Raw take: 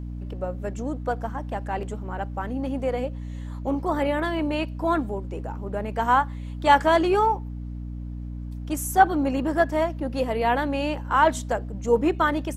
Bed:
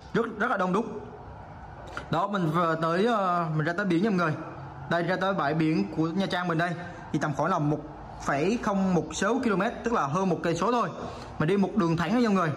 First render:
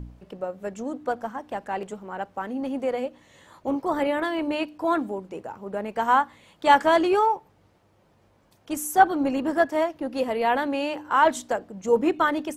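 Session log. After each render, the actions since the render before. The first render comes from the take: de-hum 60 Hz, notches 5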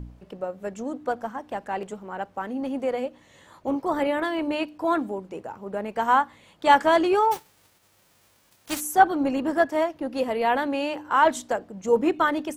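7.31–8.79 spectral whitening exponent 0.3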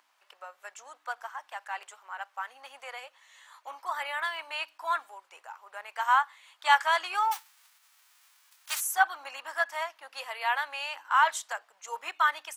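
HPF 1000 Hz 24 dB/oct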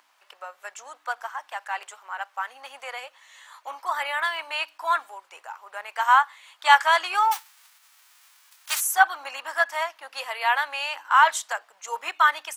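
gain +6 dB

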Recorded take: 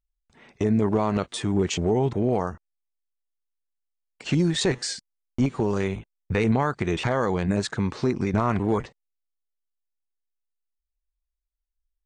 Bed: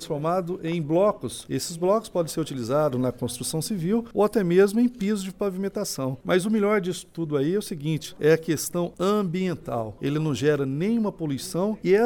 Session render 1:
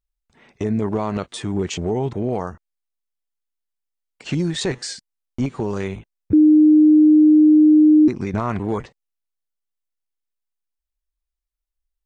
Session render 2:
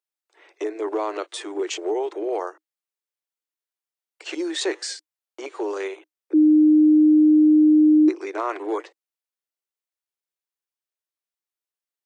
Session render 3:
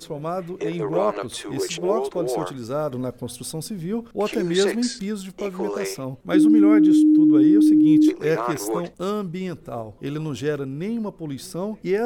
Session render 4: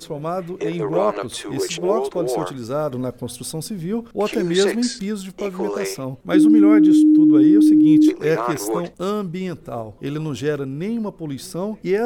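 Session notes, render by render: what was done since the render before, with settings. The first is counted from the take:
6.33–8.08 bleep 306 Hz -8 dBFS
Chebyshev high-pass 310 Hz, order 8
add bed -3 dB
gain +2.5 dB

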